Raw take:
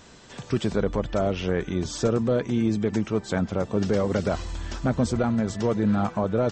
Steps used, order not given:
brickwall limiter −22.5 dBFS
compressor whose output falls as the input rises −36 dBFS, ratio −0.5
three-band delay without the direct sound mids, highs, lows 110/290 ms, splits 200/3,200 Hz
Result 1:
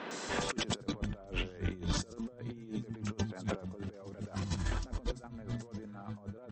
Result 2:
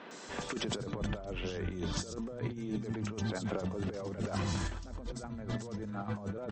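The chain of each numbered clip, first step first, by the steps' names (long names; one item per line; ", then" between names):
three-band delay without the direct sound, then compressor whose output falls as the input rises, then brickwall limiter
brickwall limiter, then three-band delay without the direct sound, then compressor whose output falls as the input rises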